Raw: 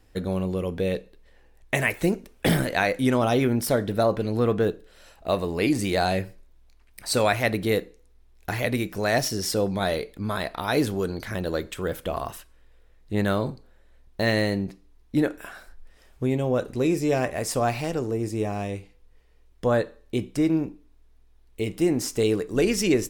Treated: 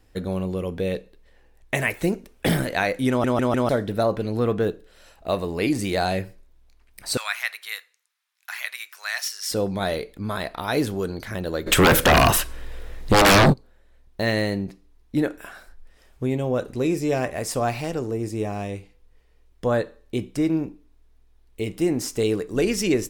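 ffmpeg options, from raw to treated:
-filter_complex "[0:a]asettb=1/sr,asplit=3[a][b][c];[a]atrim=end=7.174[d];[b]atrim=start=7.17:end=9.51,asetpts=PTS-STARTPTS,afade=t=in:d=0.004:c=qsin,afade=t=out:st=2.336:d=0.004:c=qsin,highpass=f=1.2k:w=0.5412,highpass=f=1.2k:w=1.3066[e];[c]atrim=start=9.506[f];[d][e]acrossfade=d=0.004:c1=hsin:c2=qsin[g];[g][f]acrossfade=d=0.004:c1=qsin:c2=hsin,asplit=3[h][i][j];[h]afade=t=out:st=11.66:d=0.02[k];[i]aeval=exprs='0.299*sin(PI/2*7.94*val(0)/0.299)':c=same,afade=t=in:st=11.66:d=0.02,afade=t=out:st=13.52:d=0.02[l];[j]afade=t=in:st=13.52:d=0.02[m];[k][l][m]amix=inputs=3:normalize=0,asplit=5[n][o][p][q][r];[n]atrim=end=3.242[s];[o]atrim=start=3.088:end=3.242[t];[p]atrim=start=3.088:end=3.242[u];[q]atrim=start=3.088:end=3.242[v];[r]atrim=start=3.688[w];[s][t]acrossfade=d=0.004:c1=hsin:c2=hsin[x];[x][u]acrossfade=d=0.004:c1=hsin:c2=hsin[y];[y][v]acrossfade=d=0.004:c1=hsin:c2=hsin[z];[z][w]acrossfade=d=0.004:c1=hsin:c2=hsin"

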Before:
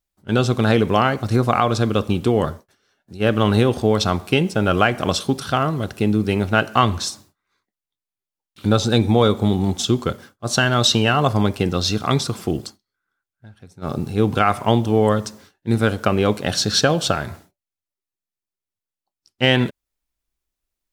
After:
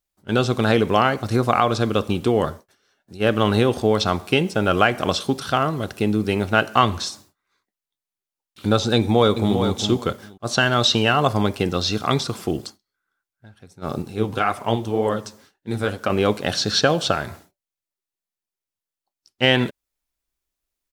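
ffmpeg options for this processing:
-filter_complex "[0:a]asplit=2[a][b];[b]afade=t=in:st=8.96:d=0.01,afade=t=out:st=9.57:d=0.01,aecho=0:1:400|800:0.421697|0.0632545[c];[a][c]amix=inputs=2:normalize=0,asettb=1/sr,asplit=3[d][e][f];[d]atrim=end=14.024[g];[e]atrim=start=14.02:end=16.1,asetpts=PTS-STARTPTS,afade=t=in:d=0.004:c=qsin,afade=t=out:st=2.076:d=0.004:c=qsin,flanger=delay=1.8:depth=9.8:regen=46:speed=1.9:shape=triangular[h];[f]atrim=start=16.096[i];[g][h]acrossfade=d=0.004:c1=hsin:c2=qsin[j];[j][i]acrossfade=d=0.004:c1=qsin:c2=hsin,acrossover=split=5500[k][l];[l]acompressor=threshold=-37dB:ratio=4:attack=1:release=60[m];[k][m]amix=inputs=2:normalize=0,bass=f=250:g=-4,treble=f=4k:g=1"

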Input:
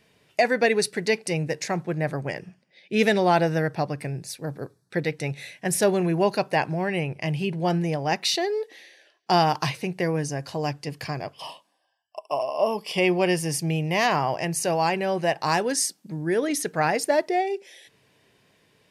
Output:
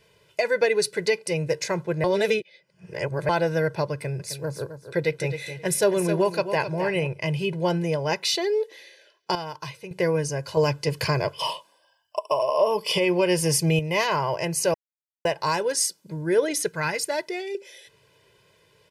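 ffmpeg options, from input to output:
-filter_complex "[0:a]asettb=1/sr,asplit=3[a][b][c];[a]atrim=end=3.934[d];[b]atrim=start=3.93:end=7.07,asetpts=PTS-STARTPTS,afade=t=in:d=0.004:c=qsin,afade=t=out:st=3.136:d=0.004:c=qsin,aecho=1:1:263|526:0.299|0.0537,atrim=end_sample=138474[e];[c]atrim=start=7.066[f];[d][e]acrossfade=d=0.004:c1=hsin:c2=qsin[g];[g][f]acrossfade=d=0.004:c1=qsin:c2=hsin,asettb=1/sr,asplit=3[h][i][j];[h]atrim=end=16.684[k];[i]atrim=start=16.68:end=17.55,asetpts=PTS-STARTPTS,afade=t=in:d=0.004:c=qsin,afade=t=out:st=0.866:d=0.004:c=qsin,equalizer=f=560:t=o:w=1.6:g=-10[l];[j]atrim=start=17.546[m];[k][l]acrossfade=d=0.004:c1=hsin:c2=qsin[n];[n][m]acrossfade=d=0.004:c1=qsin:c2=hsin,asplit=9[o][p][q][r][s][t][u][v][w];[o]atrim=end=2.042[x];[p]atrim=start=2.038:end=3.292,asetpts=PTS-STARTPTS,areverse[y];[q]atrim=start=3.288:end=9.352[z];[r]atrim=start=9.348:end=9.912,asetpts=PTS-STARTPTS,volume=-10.5dB[aa];[s]atrim=start=9.908:end=10.572[ab];[t]atrim=start=10.568:end=13.792,asetpts=PTS-STARTPTS,volume=7.5dB[ac];[u]atrim=start=13.788:end=14.74,asetpts=PTS-STARTPTS,afade=t=out:st=0.948:d=0.004:c=hsin[ad];[v]atrim=start=14.74:end=15.25,asetpts=PTS-STARTPTS,volume=0[ae];[w]atrim=start=15.25,asetpts=PTS-STARTPTS,afade=t=in:d=0.004:c=hsin[af];[x][y]acrossfade=d=0.004:c1=hsin:c2=hsin[ag];[ag][z]acrossfade=d=0.004:c1=hsin:c2=hsin[ah];[ah][aa]acrossfade=d=0.004:c1=hsin:c2=hsin[ai];[ai][ab]acrossfade=d=0.004:c1=hsin:c2=hsin[aj];[aj][ac]acrossfade=d=0.004:c1=hsin:c2=hsin[ak];[ad][ae][af]concat=n=3:v=0:a=1[al];[ak][al]acrossfade=d=0.004:c1=hsin:c2=hsin,alimiter=limit=-13.5dB:level=0:latency=1:release=399,bandreject=f=1.9k:w=24,aecho=1:1:2:0.76"

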